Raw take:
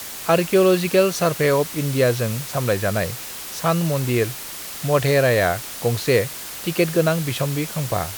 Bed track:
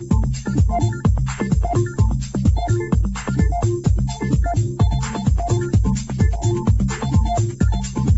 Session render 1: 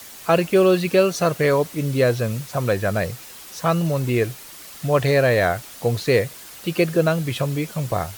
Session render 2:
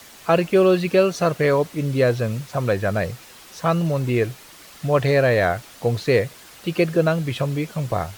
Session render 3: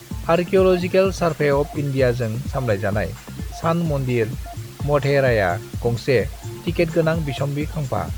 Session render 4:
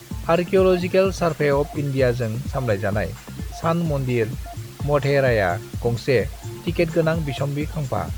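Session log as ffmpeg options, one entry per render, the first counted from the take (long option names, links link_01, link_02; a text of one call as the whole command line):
ffmpeg -i in.wav -af "afftdn=noise_reduction=8:noise_floor=-33" out.wav
ffmpeg -i in.wav -af "highshelf=frequency=6600:gain=-9" out.wav
ffmpeg -i in.wav -i bed.wav -filter_complex "[1:a]volume=-13.5dB[link_01];[0:a][link_01]amix=inputs=2:normalize=0" out.wav
ffmpeg -i in.wav -af "volume=-1dB" out.wav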